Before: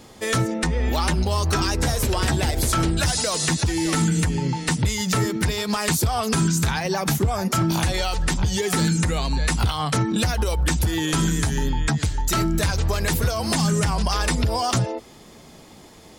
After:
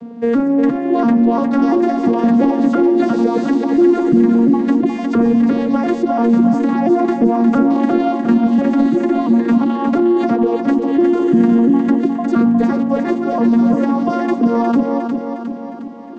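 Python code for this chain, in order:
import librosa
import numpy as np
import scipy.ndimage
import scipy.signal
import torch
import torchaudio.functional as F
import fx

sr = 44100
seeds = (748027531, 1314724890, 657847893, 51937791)

p1 = fx.vocoder_arp(x, sr, chord='minor triad', root=58, every_ms=343)
p2 = fx.high_shelf(p1, sr, hz=3900.0, db=-6.5)
p3 = fx.over_compress(p2, sr, threshold_db=-25.0, ratio=-0.5)
p4 = p2 + (p3 * 10.0 ** (0.0 / 20.0))
p5 = fx.tilt_eq(p4, sr, slope=-4.0)
p6 = fx.echo_feedback(p5, sr, ms=358, feedback_pct=54, wet_db=-6.0)
y = p6 * 10.0 ** (-1.0 / 20.0)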